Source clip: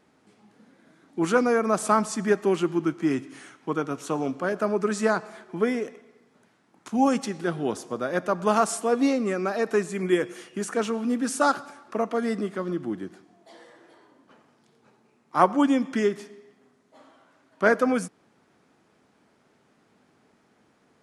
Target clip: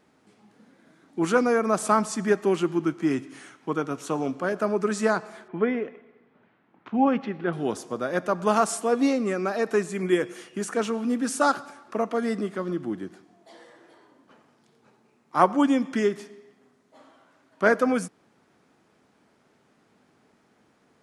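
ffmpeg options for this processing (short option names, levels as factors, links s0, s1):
-filter_complex "[0:a]asettb=1/sr,asplit=3[s0][s1][s2];[s0]atrim=end=5.484[s3];[s1]atrim=start=5.48:end=7.53,asetpts=PTS-STARTPTS,afade=t=in:d=0.004:c=qsin,afade=t=out:st=2.046:d=0.004:c=qsin,lowpass=f=3000:w=0.5412,lowpass=f=3000:w=1.3066[s4];[s2]atrim=start=7.526[s5];[s3][s4]acrossfade=d=0.004:c1=hsin:c2=qsin[s6];[s6][s5]acrossfade=d=0.004:c1=qsin:c2=hsin"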